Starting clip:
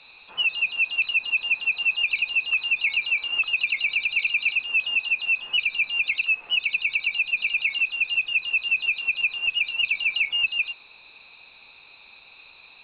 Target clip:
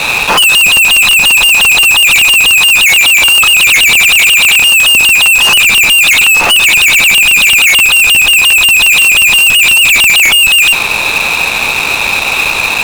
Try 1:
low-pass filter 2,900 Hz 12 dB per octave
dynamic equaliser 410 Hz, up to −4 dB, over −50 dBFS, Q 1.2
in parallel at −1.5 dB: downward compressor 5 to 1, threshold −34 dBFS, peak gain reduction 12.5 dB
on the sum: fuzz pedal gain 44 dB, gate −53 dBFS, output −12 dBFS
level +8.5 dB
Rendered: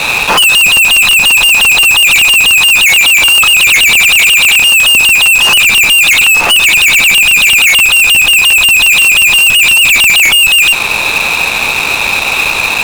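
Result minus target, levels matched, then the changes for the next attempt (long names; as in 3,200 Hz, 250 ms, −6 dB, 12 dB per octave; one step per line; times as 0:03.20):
downward compressor: peak gain reduction +7 dB
change: downward compressor 5 to 1, threshold −25.5 dBFS, peak gain reduction 5.5 dB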